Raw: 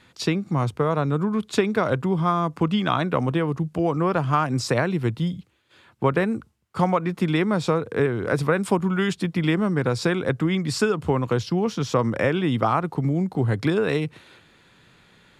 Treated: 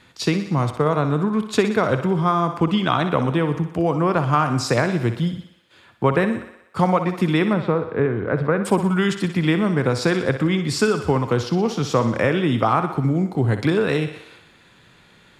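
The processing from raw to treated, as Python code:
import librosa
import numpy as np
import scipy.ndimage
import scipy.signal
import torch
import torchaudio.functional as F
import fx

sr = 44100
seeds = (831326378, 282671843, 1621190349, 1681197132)

p1 = fx.air_absorb(x, sr, metres=490.0, at=(7.53, 8.65))
p2 = p1 + fx.echo_thinned(p1, sr, ms=61, feedback_pct=64, hz=250.0, wet_db=-10, dry=0)
y = F.gain(torch.from_numpy(p2), 2.5).numpy()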